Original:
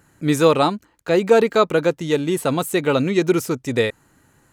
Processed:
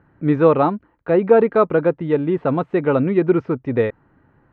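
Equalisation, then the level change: low-pass 1.7 kHz 12 dB/octave; distance through air 260 m; +2.0 dB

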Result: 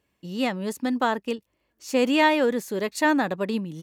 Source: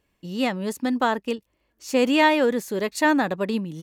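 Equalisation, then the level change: high-pass 60 Hz; -1.5 dB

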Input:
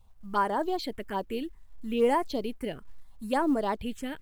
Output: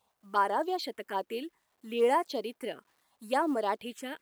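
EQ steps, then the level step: high-pass 360 Hz 12 dB/octave; 0.0 dB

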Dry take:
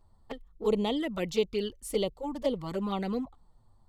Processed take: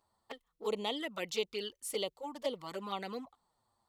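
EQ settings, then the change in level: high-pass 1 kHz 6 dB/octave; 0.0 dB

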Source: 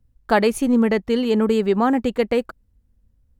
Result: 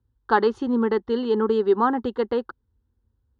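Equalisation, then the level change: dynamic bell 1.2 kHz, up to +4 dB, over -34 dBFS, Q 3; cabinet simulation 100–3700 Hz, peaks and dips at 280 Hz -8 dB, 490 Hz -5 dB, 1.2 kHz -5 dB, 1.9 kHz -3 dB; static phaser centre 640 Hz, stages 6; +3.5 dB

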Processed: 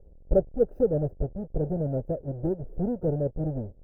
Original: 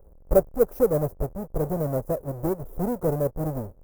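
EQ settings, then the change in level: boxcar filter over 40 samples; 0.0 dB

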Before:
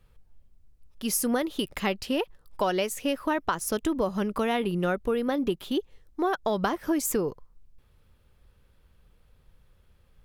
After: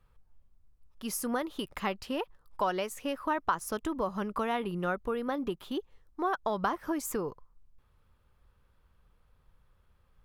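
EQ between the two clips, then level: bass shelf 210 Hz +3 dB; peaking EQ 1.1 kHz +9 dB 1.2 oct; -8.5 dB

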